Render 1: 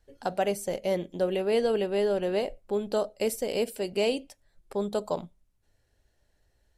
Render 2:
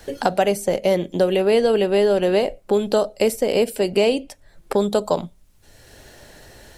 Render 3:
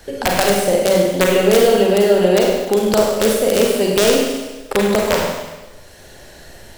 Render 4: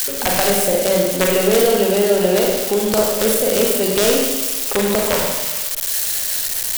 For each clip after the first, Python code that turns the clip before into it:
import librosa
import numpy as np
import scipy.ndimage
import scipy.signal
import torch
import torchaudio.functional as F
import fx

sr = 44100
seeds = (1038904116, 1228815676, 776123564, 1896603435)

y1 = fx.band_squash(x, sr, depth_pct=70)
y1 = y1 * librosa.db_to_amplitude(9.0)
y2 = (np.mod(10.0 ** (7.5 / 20.0) * y1 + 1.0, 2.0) - 1.0) / 10.0 ** (7.5 / 20.0)
y2 = fx.rev_schroeder(y2, sr, rt60_s=1.2, comb_ms=33, drr_db=-1.5)
y2 = y2 * librosa.db_to_amplitude(1.0)
y3 = y2 + 0.5 * 10.0 ** (-9.5 / 20.0) * np.diff(np.sign(y2), prepend=np.sign(y2[:1]))
y3 = y3 * librosa.db_to_amplitude(-2.5)